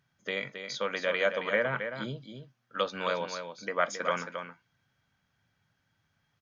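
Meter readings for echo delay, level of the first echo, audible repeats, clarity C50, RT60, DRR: 0.27 s, -8.0 dB, 1, none, none, none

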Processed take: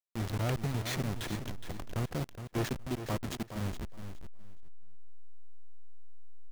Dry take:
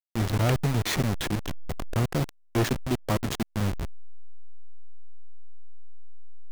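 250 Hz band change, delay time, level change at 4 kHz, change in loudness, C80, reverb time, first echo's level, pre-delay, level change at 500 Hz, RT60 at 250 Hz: -8.0 dB, 0.417 s, -8.0 dB, -8.5 dB, none, none, -10.0 dB, none, -8.0 dB, none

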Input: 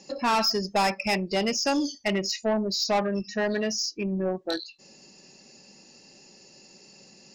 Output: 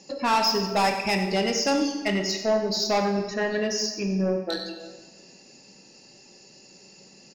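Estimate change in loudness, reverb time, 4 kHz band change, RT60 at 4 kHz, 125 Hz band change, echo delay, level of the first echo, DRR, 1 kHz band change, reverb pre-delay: +1.5 dB, 1.4 s, +1.0 dB, 1.1 s, +3.0 dB, 95 ms, -13.5 dB, 4.0 dB, +2.0 dB, 8 ms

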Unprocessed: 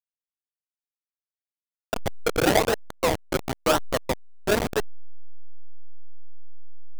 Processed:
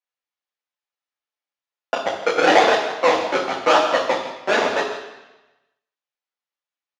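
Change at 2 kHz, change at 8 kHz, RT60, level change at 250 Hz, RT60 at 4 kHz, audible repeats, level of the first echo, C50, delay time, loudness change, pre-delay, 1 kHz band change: +8.5 dB, -2.0 dB, 1.0 s, +1.0 dB, 1.1 s, 1, -13.0 dB, 5.0 dB, 0.159 s, +6.5 dB, 3 ms, +10.0 dB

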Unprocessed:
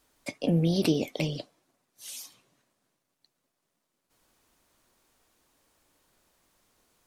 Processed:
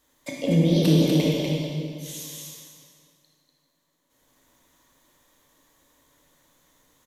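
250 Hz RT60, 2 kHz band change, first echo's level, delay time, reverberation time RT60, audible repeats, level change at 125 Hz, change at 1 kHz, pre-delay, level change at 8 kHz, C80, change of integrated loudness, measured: 2.3 s, +4.0 dB, -3.5 dB, 0.244 s, 2.1 s, 1, +8.0 dB, +4.0 dB, 19 ms, +6.5 dB, -1.5 dB, +6.5 dB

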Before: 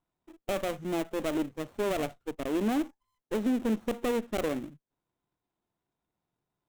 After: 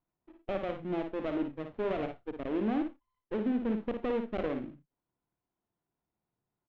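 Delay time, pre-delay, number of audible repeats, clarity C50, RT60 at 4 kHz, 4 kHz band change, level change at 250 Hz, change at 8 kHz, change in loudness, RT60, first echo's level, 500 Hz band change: 56 ms, none, 2, none, none, -9.0 dB, -2.0 dB, under -25 dB, -2.5 dB, none, -6.5 dB, -2.5 dB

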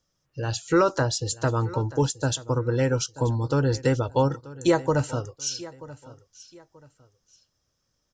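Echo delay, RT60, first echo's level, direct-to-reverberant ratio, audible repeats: 0.933 s, none, -18.5 dB, none, 2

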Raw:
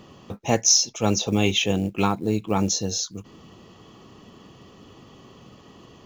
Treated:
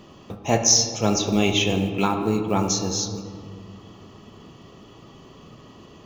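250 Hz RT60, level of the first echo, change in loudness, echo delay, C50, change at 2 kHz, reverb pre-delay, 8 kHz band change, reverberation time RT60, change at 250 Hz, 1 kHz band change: 2.7 s, none, +1.0 dB, none, 6.5 dB, +1.0 dB, 3 ms, +0.5 dB, 2.1 s, +1.5 dB, +2.0 dB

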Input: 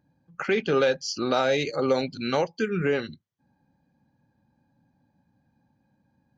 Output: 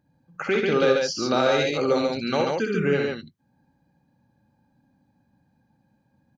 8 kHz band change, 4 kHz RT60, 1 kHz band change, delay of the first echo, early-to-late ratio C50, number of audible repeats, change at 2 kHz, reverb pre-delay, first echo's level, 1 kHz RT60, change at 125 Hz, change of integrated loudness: n/a, none, +2.5 dB, 63 ms, none, 2, +2.5 dB, none, -5.0 dB, none, +2.5 dB, +2.5 dB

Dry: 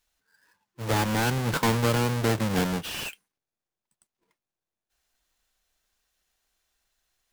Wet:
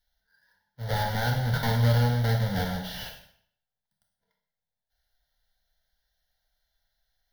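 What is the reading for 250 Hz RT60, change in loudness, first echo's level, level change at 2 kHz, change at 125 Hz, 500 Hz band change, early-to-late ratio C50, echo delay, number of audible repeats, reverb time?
0.65 s, -0.5 dB, none, -2.5 dB, +3.5 dB, -4.0 dB, 5.5 dB, none, none, 0.60 s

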